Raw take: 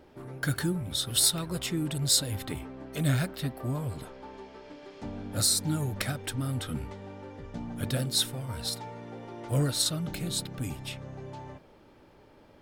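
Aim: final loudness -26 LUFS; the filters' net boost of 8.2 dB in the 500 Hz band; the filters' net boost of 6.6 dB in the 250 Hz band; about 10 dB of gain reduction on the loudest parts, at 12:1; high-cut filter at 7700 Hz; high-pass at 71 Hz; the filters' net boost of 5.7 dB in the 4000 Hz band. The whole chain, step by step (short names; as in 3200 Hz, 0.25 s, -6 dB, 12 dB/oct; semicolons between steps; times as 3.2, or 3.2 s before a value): HPF 71 Hz; LPF 7700 Hz; bell 250 Hz +7 dB; bell 500 Hz +8 dB; bell 4000 Hz +6.5 dB; compressor 12:1, threshold -27 dBFS; gain +6.5 dB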